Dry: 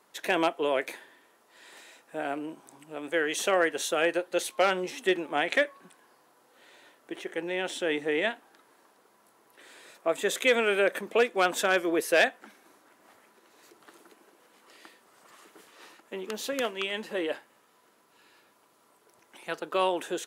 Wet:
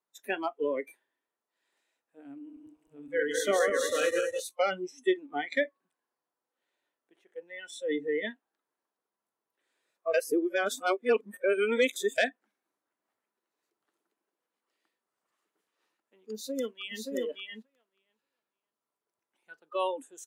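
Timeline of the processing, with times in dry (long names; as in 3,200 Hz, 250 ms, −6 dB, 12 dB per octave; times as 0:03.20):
0:02.36–0:04.40: feedback delay that plays each chunk backwards 103 ms, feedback 74%, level −3 dB
0:10.14–0:12.18: reverse
0:16.33–0:17.04: delay throw 580 ms, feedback 15%, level −1.5 dB
whole clip: noise reduction from a noise print of the clip's start 23 dB; dynamic equaliser 290 Hz, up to +7 dB, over −42 dBFS, Q 0.97; level −4.5 dB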